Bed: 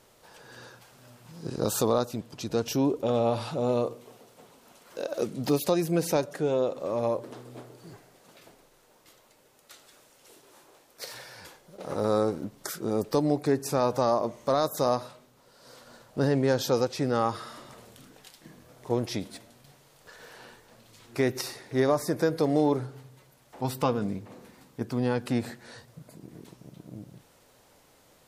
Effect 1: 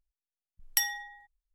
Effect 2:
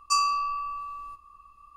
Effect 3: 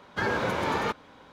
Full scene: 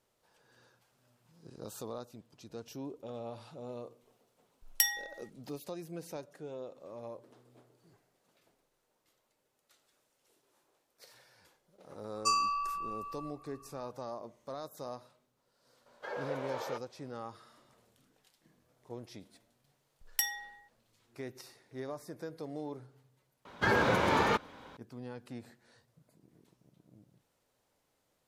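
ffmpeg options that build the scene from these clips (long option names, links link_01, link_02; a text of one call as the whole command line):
ffmpeg -i bed.wav -i cue0.wav -i cue1.wav -i cue2.wav -filter_complex "[1:a]asplit=2[link_01][link_02];[3:a]asplit=2[link_03][link_04];[0:a]volume=-17.5dB[link_05];[link_01]equalizer=frequency=220:width=0.45:gain=-14.5[link_06];[link_03]highpass=frequency=540:width_type=q:width=3.9[link_07];[link_06]atrim=end=1.54,asetpts=PTS-STARTPTS,volume=-0.5dB,afade=type=in:duration=0.004:curve=hsin,afade=type=out:start_time=1.536:duration=0.004:curve=hsin,adelay=4030[link_08];[2:a]atrim=end=1.76,asetpts=PTS-STARTPTS,volume=-5.5dB,afade=type=in:duration=0.004:curve=hsin,afade=type=out:start_time=1.756:duration=0.004:curve=hsin,adelay=12150[link_09];[link_07]atrim=end=1.32,asetpts=PTS-STARTPTS,volume=-16.5dB,afade=type=in:duration=0.004:curve=hsin,afade=type=out:start_time=1.316:duration=0.004:curve=hsin,adelay=15860[link_10];[link_02]atrim=end=1.54,asetpts=PTS-STARTPTS,volume=-4.5dB,afade=type=in:duration=0.004:curve=hsin,afade=type=out:start_time=1.536:duration=0.004:curve=hsin,adelay=19420[link_11];[link_04]atrim=end=1.32,asetpts=PTS-STARTPTS,afade=type=in:duration=0.004:curve=hsin,afade=type=out:start_time=1.316:duration=0.004:curve=hsin,adelay=23450[link_12];[link_05][link_08][link_09][link_10][link_11][link_12]amix=inputs=6:normalize=0" out.wav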